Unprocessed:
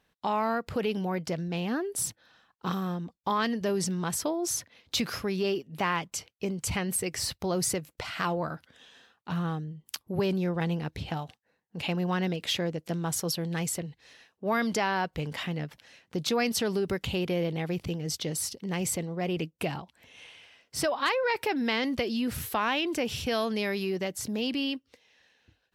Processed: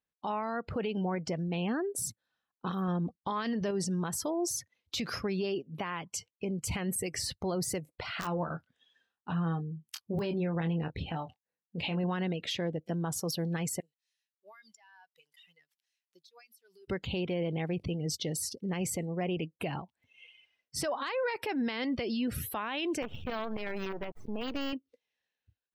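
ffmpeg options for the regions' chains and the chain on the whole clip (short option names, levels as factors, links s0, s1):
-filter_complex "[0:a]asettb=1/sr,asplit=3[s0][s1][s2];[s0]atrim=end=2.884[s3];[s1]atrim=start=2.88:end=3.71,asetpts=PTS-STARTPTS,afade=t=in:d=0.004:c=qsin,afade=t=out:st=0.826:d=0.004:c=qsin,lowpass=11000,acontrast=44[s4];[s2]atrim=start=3.706[s5];[s3][s4]acrossfade=d=0.004:c1=hsin:c2=qsin[s6];[s6][s5]acrossfade=d=0.004:c1=qsin:c2=hsin,asettb=1/sr,asplit=3[s7][s8][s9];[s7]atrim=end=8.124[s10];[s8]atrim=start=8.12:end=12.04,asetpts=PTS-STARTPTS,afade=t=in:d=0.004:c=qsin,afade=t=out:st=3.916:d=0.004:c=qsin,aeval=exprs='(mod(5.96*val(0)+1,2)-1)/5.96':c=same,asplit=2[s11][s12];[s12]adelay=24,volume=0.422[s13];[s11][s13]amix=inputs=2:normalize=0,atrim=end_sample=172872[s14];[s9]atrim=start=12.036[s15];[s10][s14]acrossfade=d=0.004:c1=hsin:c2=qsin[s16];[s16][s15]acrossfade=d=0.004:c1=qsin:c2=hsin,asettb=1/sr,asplit=3[s17][s18][s19];[s17]atrim=end=13.804[s20];[s18]atrim=start=13.8:end=16.88,asetpts=PTS-STARTPTS,afade=t=in:d=0.004:c=qsin,afade=t=out:st=3.076:d=0.004:c=qsin,aderivative,acompressor=threshold=0.00501:ratio=16:attack=3.2:release=140:knee=1:detection=peak[s21];[s19]atrim=start=16.876[s22];[s20][s21]acrossfade=d=0.004:c1=hsin:c2=qsin[s23];[s23][s22]acrossfade=d=0.004:c1=qsin:c2=hsin,asettb=1/sr,asplit=3[s24][s25][s26];[s24]atrim=end=23.024[s27];[s25]atrim=start=23.02:end=24.73,asetpts=PTS-STARTPTS,afade=t=in:d=0.004:c=qsin,afade=t=out:st=1.706:d=0.004:c=qsin,acrusher=bits=5:dc=4:mix=0:aa=0.000001,equalizer=f=10000:w=0.36:g=-13[s28];[s26]atrim=start=24.726[s29];[s27][s28]acrossfade=d=0.004:c1=hsin:c2=qsin[s30];[s30][s29]acrossfade=d=0.004:c1=qsin:c2=hsin,afftdn=nr=23:nf=-44,deesser=0.5,alimiter=level_in=1.12:limit=0.0631:level=0:latency=1:release=98,volume=0.891"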